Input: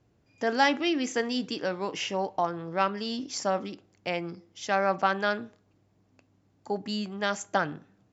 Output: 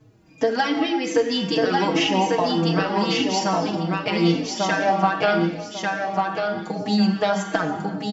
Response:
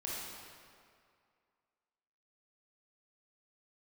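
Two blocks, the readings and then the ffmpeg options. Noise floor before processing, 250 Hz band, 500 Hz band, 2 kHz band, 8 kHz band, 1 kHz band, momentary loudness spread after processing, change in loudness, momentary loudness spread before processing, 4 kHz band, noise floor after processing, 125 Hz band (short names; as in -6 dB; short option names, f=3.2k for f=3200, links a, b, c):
-68 dBFS, +11.0 dB, +8.0 dB, +5.5 dB, n/a, +7.0 dB, 6 LU, +7.5 dB, 11 LU, +8.5 dB, -45 dBFS, +14.5 dB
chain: -filter_complex "[0:a]bandreject=f=550:w=12,acrossover=split=6100[a][b];[b]acompressor=threshold=-56dB:ratio=4:attack=1:release=60[c];[a][c]amix=inputs=2:normalize=0,equalizer=f=160:w=0.38:g=4,bandreject=f=50:t=h:w=6,bandreject=f=100:t=h:w=6,bandreject=f=150:t=h:w=6,bandreject=f=200:t=h:w=6,aecho=1:1:6.3:0.62,acompressor=threshold=-27dB:ratio=6,aecho=1:1:1145|2290|3435:0.708|0.17|0.0408,asplit=2[d][e];[1:a]atrim=start_sample=2205,afade=t=out:st=0.45:d=0.01,atrim=end_sample=20286[f];[e][f]afir=irnorm=-1:irlink=0,volume=-4dB[g];[d][g]amix=inputs=2:normalize=0,asplit=2[h][i];[i]adelay=4.1,afreqshift=-2.5[j];[h][j]amix=inputs=2:normalize=1,volume=9dB"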